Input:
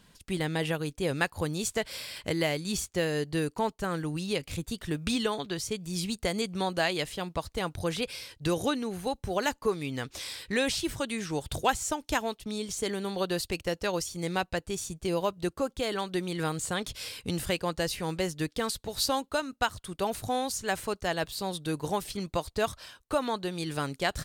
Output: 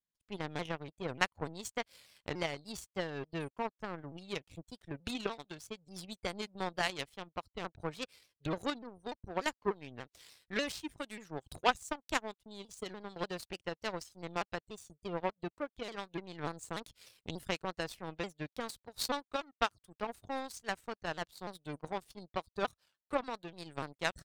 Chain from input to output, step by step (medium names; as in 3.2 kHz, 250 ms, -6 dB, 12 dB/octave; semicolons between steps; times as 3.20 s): spectral gate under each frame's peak -25 dB strong; power-law waveshaper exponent 2; vibrato with a chosen wave saw down 3.4 Hz, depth 160 cents; trim +2.5 dB